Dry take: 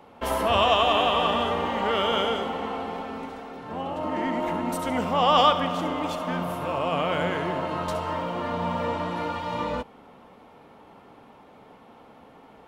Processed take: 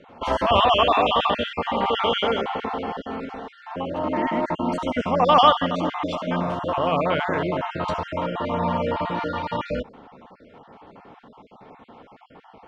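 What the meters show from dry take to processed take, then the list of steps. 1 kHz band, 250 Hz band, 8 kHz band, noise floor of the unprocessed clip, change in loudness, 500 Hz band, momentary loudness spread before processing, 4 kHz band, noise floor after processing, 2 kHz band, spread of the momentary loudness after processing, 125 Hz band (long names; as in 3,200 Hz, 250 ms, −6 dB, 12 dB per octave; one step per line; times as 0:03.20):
+3.0 dB, +3.0 dB, can't be measured, −51 dBFS, +2.5 dB, +3.0 dB, 13 LU, +1.5 dB, −51 dBFS, +2.0 dB, 13 LU, +3.0 dB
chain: time-frequency cells dropped at random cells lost 31%
Bessel low-pass filter 4,400 Hz, order 4
level +4.5 dB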